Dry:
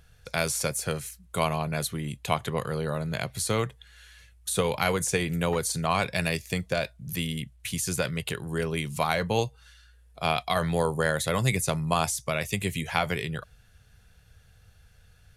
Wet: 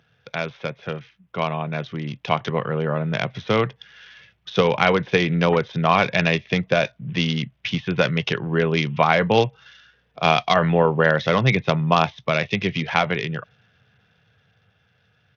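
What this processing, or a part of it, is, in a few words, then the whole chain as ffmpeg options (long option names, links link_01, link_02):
Bluetooth headset: -af "highpass=frequency=120:width=0.5412,highpass=frequency=120:width=1.3066,dynaudnorm=framelen=350:gausssize=13:maxgain=12.5dB,aresample=8000,aresample=44100,volume=1dB" -ar 48000 -c:a sbc -b:a 64k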